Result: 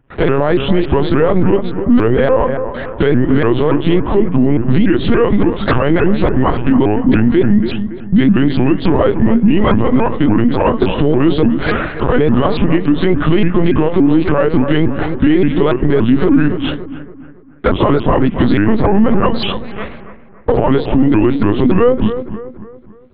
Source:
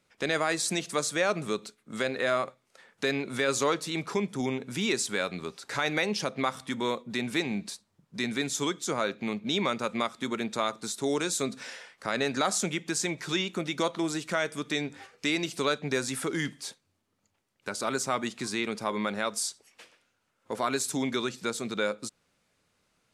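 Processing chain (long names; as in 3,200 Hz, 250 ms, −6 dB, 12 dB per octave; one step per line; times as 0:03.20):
partials spread apart or drawn together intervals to 91%
noise gate with hold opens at −55 dBFS
spectral tilt −4.5 dB per octave
0:13.01–0:15.16: leveller curve on the samples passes 1
downward compressor 8 to 1, threshold −36 dBFS, peak gain reduction 18 dB
hard clipping −30 dBFS, distortion −30 dB
linear-prediction vocoder at 8 kHz pitch kept
bucket-brigade delay 281 ms, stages 4,096, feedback 41%, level −13.5 dB
boost into a limiter +33 dB
pitch modulation by a square or saw wave saw up 3.5 Hz, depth 250 cents
level −1 dB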